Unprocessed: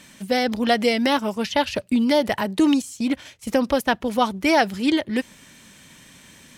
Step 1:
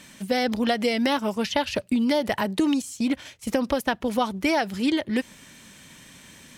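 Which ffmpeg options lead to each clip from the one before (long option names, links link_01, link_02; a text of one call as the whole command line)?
ffmpeg -i in.wav -af "acompressor=threshold=-19dB:ratio=6" out.wav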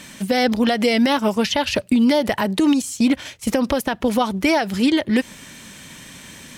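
ffmpeg -i in.wav -af "alimiter=limit=-16.5dB:level=0:latency=1:release=107,volume=8dB" out.wav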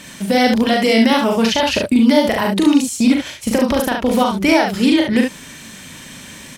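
ffmpeg -i in.wav -af "aecho=1:1:40|71:0.668|0.596,volume=1.5dB" out.wav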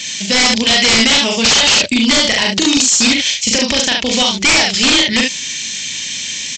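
ffmpeg -i in.wav -af "aexciter=amount=7.1:drive=6.8:freq=2000,aresample=16000,aeval=exprs='0.708*(abs(mod(val(0)/0.708+3,4)-2)-1)':channel_layout=same,aresample=44100,volume=-2.5dB" out.wav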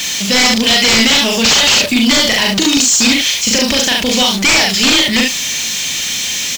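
ffmpeg -i in.wav -filter_complex "[0:a]aeval=exprs='val(0)+0.5*0.133*sgn(val(0))':channel_layout=same,asplit=2[link_01][link_02];[link_02]adelay=36,volume=-13.5dB[link_03];[link_01][link_03]amix=inputs=2:normalize=0,volume=-1dB" out.wav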